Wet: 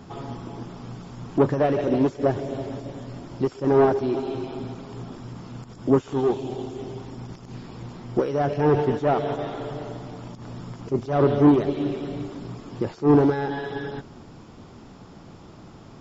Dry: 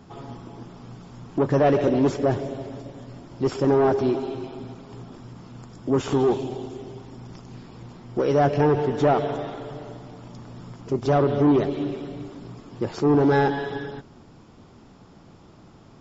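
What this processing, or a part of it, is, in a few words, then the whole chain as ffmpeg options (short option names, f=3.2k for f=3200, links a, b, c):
de-esser from a sidechain: -filter_complex "[0:a]asplit=2[a][b];[b]highpass=f=4.5k:w=0.5412,highpass=f=4.5k:w=1.3066,apad=whole_len=705645[c];[a][c]sidechaincompress=threshold=-57dB:ratio=4:attack=0.72:release=77,volume=4.5dB"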